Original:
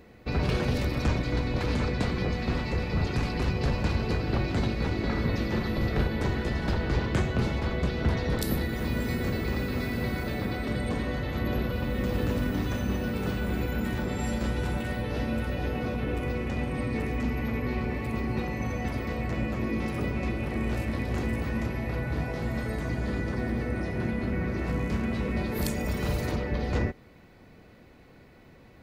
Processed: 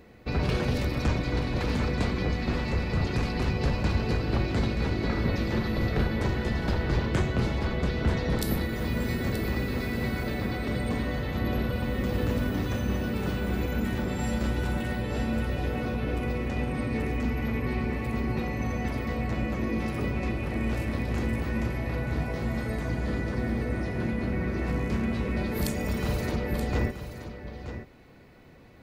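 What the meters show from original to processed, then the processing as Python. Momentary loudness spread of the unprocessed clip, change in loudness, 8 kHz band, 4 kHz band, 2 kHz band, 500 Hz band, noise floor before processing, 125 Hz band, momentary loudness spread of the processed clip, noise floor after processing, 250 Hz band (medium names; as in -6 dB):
3 LU, +0.5 dB, +0.5 dB, +0.5 dB, +0.5 dB, +0.5 dB, -53 dBFS, +0.5 dB, 3 LU, -41 dBFS, +0.5 dB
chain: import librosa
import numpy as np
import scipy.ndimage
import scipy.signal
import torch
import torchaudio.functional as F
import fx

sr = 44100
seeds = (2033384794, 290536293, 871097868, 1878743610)

y = x + 10.0 ** (-10.5 / 20.0) * np.pad(x, (int(928 * sr / 1000.0), 0))[:len(x)]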